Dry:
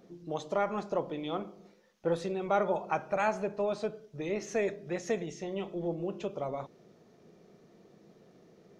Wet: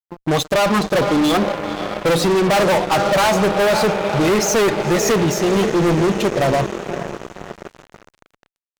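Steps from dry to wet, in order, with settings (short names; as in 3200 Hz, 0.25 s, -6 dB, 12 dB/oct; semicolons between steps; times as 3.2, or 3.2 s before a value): per-bin expansion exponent 1.5; diffused feedback echo 0.514 s, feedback 66%, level -15 dB; fuzz box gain 45 dB, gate -53 dBFS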